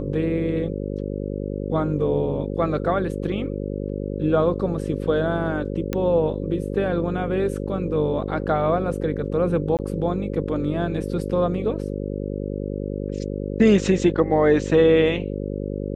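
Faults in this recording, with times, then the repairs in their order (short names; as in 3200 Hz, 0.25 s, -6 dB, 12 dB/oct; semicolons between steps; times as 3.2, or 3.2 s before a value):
buzz 50 Hz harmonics 11 -28 dBFS
5.93 pop -12 dBFS
9.77–9.79 gap 18 ms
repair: de-click; de-hum 50 Hz, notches 11; interpolate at 9.77, 18 ms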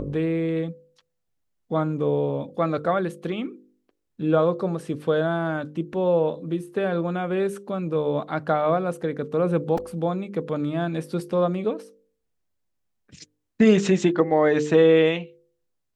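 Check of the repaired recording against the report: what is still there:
none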